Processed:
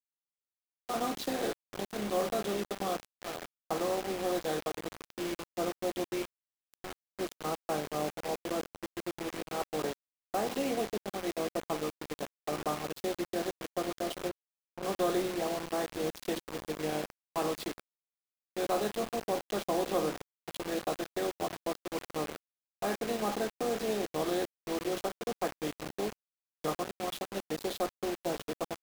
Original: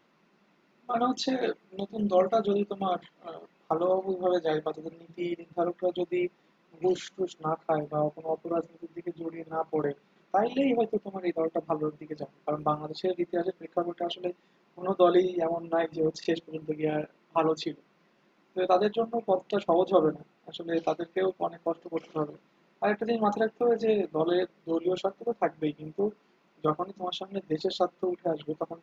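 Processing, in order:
compressor on every frequency bin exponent 0.6
tube saturation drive 11 dB, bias 0.3
0:06.22–0:07.19: downward compressor 2 to 1, threshold −41 dBFS, peak gain reduction 11.5 dB
bit reduction 5 bits
0:14.29–0:14.83: high-shelf EQ 2,700 Hz −11 dB
level −9 dB

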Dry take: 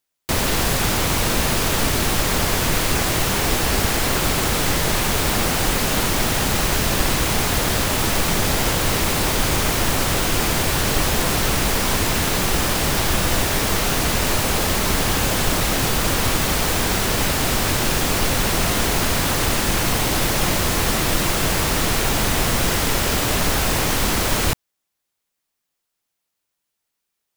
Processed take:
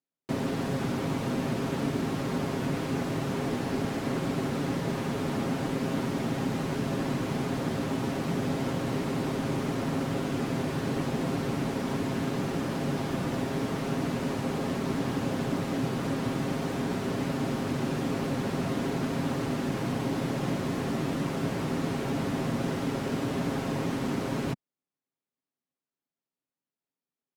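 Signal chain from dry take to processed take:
resonant band-pass 210 Hz, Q 1.5
spectral tilt +2.5 dB per octave
comb filter 7.4 ms, depth 47%
level +3.5 dB

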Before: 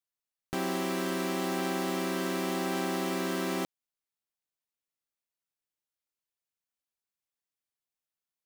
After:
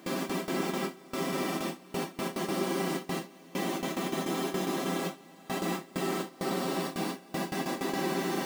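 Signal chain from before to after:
extreme stretch with random phases 41×, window 0.05 s, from 0:02.42
noise gate with hold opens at −21 dBFS

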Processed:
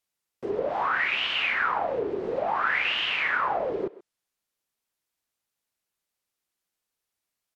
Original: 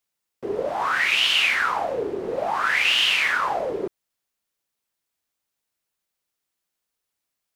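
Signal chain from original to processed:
far-end echo of a speakerphone 130 ms, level −17 dB
treble cut that deepens with the level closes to 2,200 Hz, closed at −20 dBFS
level −2 dB

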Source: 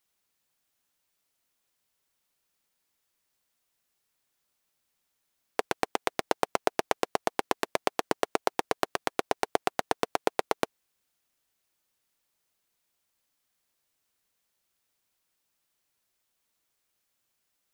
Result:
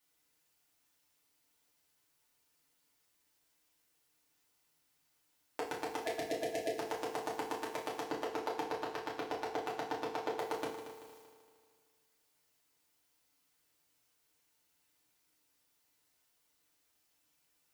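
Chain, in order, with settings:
0:06.06–0:06.70: time-frequency box erased 670–1,700 Hz
0:08.02–0:10.41: low-pass filter 7,100 Hz 12 dB per octave
transient designer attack −2 dB, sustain +11 dB
brickwall limiter −18 dBFS, peak gain reduction 11.5 dB
echo machine with several playback heads 77 ms, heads second and third, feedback 51%, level −12.5 dB
feedback delay network reverb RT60 0.47 s, low-frequency decay 1.1×, high-frequency decay 0.95×, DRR −4.5 dB
level −4 dB

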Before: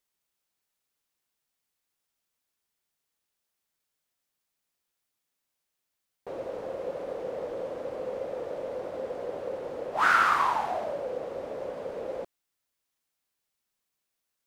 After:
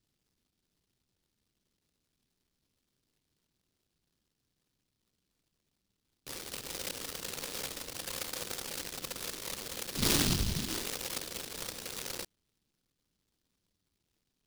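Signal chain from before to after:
high-shelf EQ 11,000 Hz +12 dB
decimation without filtering 42×
short delay modulated by noise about 4,100 Hz, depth 0.47 ms
level −6 dB

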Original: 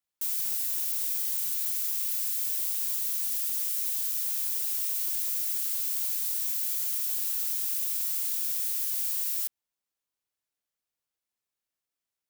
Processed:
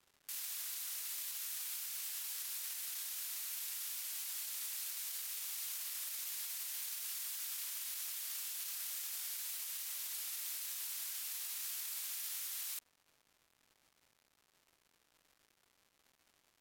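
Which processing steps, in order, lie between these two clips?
high-pass filter 1,200 Hz 6 dB per octave
high-shelf EQ 6,100 Hz −11 dB
brickwall limiter −37.5 dBFS, peak gain reduction 10.5 dB
surface crackle 460 per second −62 dBFS
wrong playback speed 45 rpm record played at 33 rpm
level +4.5 dB

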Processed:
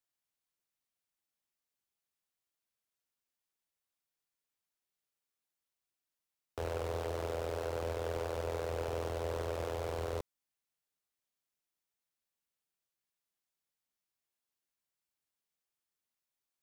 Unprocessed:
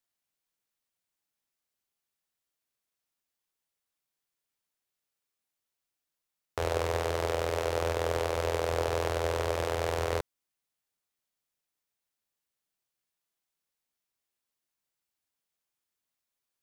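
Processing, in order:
hard clipping −25.5 dBFS, distortion −9 dB
level −4.5 dB

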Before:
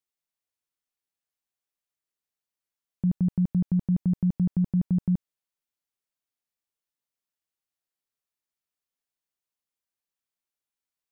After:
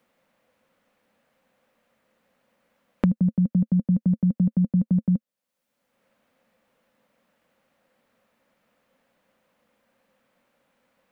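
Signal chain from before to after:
tilt shelving filter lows −4 dB, about 720 Hz
hollow resonant body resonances 220/520 Hz, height 17 dB, ringing for 40 ms
multiband upward and downward compressor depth 100%
level −5.5 dB

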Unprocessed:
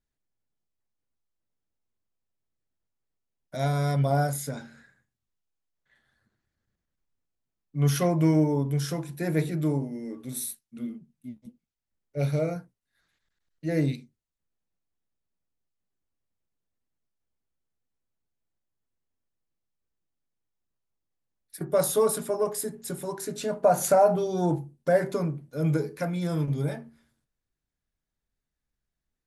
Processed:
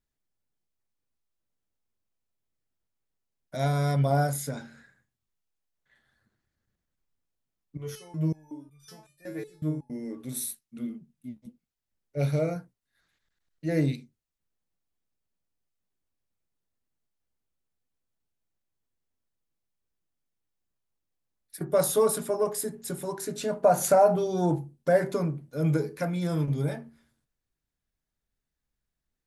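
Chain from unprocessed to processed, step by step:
0:07.77–0:09.90: step-sequenced resonator 5.4 Hz 110–1,200 Hz

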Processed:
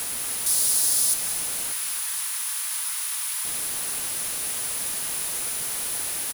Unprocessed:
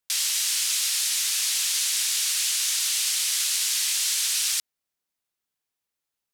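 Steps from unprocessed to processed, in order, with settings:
sign of each sample alone
flutter between parallel walls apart 6.7 metres, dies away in 0.21 s
reverb reduction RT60 0.85 s
wrap-around overflow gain 37 dB
0:00.46–0:01.14: high shelf with overshoot 3,600 Hz +7.5 dB, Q 1.5
0:01.72–0:03.45: Butterworth high-pass 850 Hz 72 dB per octave
parametric band 10,000 Hz +14.5 dB 0.23 octaves
repeating echo 287 ms, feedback 41%, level −16 dB
feedback echo at a low word length 263 ms, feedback 55%, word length 10 bits, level −14.5 dB
level +9 dB

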